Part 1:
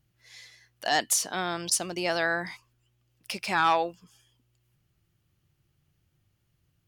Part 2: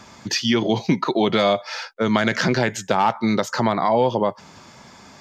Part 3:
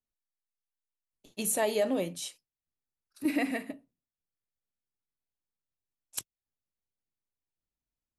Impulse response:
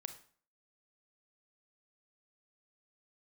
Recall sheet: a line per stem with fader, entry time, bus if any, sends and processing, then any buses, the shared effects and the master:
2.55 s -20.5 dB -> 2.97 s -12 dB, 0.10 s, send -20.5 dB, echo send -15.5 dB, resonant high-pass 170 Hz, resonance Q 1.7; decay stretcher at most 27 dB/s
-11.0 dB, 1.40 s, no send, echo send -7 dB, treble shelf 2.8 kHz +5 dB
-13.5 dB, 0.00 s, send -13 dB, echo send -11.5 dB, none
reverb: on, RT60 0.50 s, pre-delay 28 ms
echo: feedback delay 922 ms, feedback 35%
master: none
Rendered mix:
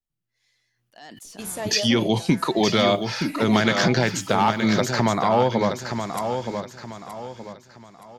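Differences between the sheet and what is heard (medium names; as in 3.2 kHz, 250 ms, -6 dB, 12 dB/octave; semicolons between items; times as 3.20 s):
stem 2 -11.0 dB -> -2.5 dB; stem 3 -13.5 dB -> -4.0 dB; master: extra bass shelf 98 Hz +10.5 dB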